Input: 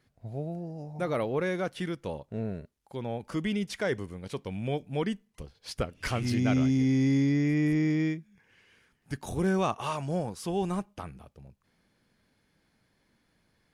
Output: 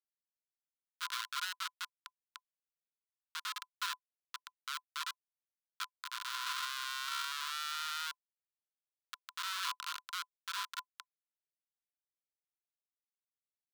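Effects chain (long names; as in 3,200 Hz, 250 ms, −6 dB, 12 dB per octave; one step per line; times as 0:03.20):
sound drawn into the spectrogram rise, 0:10.45–0:11.37, 1,400–5,000 Hz −41 dBFS
comparator with hysteresis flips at −25 dBFS
Chebyshev high-pass with heavy ripple 980 Hz, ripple 9 dB
level +8 dB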